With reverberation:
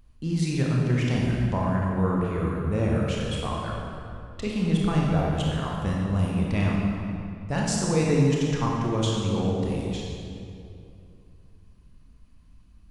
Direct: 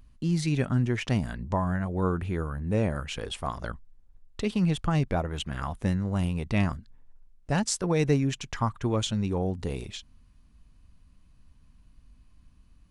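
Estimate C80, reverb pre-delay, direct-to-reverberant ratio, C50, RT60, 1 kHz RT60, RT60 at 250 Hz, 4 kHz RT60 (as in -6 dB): 1.0 dB, 25 ms, -3.0 dB, -1.0 dB, 2.6 s, 2.4 s, 3.0 s, 1.7 s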